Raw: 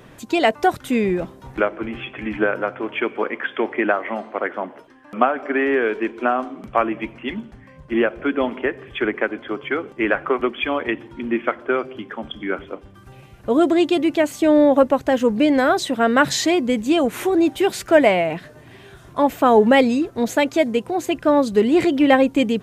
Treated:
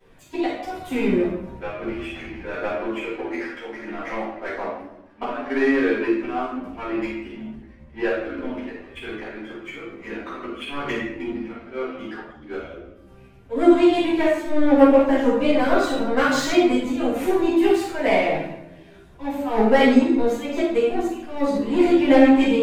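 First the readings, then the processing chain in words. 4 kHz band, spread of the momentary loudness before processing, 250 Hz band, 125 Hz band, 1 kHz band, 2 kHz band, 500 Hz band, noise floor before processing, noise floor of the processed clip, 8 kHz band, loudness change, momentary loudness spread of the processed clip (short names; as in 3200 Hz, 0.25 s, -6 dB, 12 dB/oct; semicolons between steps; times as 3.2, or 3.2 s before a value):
-4.5 dB, 14 LU, -0.5 dB, -3.0 dB, -4.5 dB, -4.5 dB, -2.5 dB, -46 dBFS, -47 dBFS, -6.5 dB, -1.5 dB, 19 LU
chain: auto swell 0.17 s; in parallel at +2.5 dB: compressor, threshold -24 dBFS, peak gain reduction 14 dB; on the sum: power-law curve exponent 1.4; shoebox room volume 290 m³, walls mixed, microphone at 7.1 m; chorus voices 4, 0.31 Hz, delay 13 ms, depth 2.2 ms; gain -15 dB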